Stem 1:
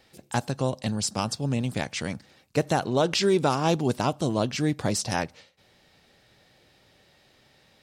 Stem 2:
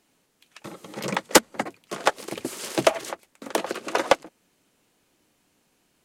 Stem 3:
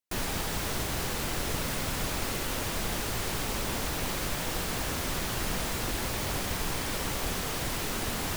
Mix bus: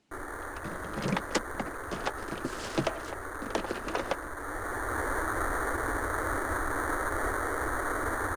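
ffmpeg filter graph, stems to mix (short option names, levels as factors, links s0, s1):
-filter_complex "[1:a]lowpass=6400,volume=0.562[s0];[2:a]equalizer=f=3800:t=o:w=0.26:g=6.5,acrusher=samples=17:mix=1:aa=0.000001,firequalizer=gain_entry='entry(100,0);entry(160,-23);entry(290,4);entry(780,1);entry(1300,7);entry(1800,9);entry(2700,-14);entry(4800,-10);entry(9400,6);entry(15000,-8)':delay=0.05:min_phase=1,volume=0.794,afade=t=in:st=4.31:d=0.76:silence=0.398107[s1];[s0]equalizer=f=130:t=o:w=1.8:g=9,alimiter=limit=0.158:level=0:latency=1:release=500,volume=1[s2];[s1][s2]amix=inputs=2:normalize=0"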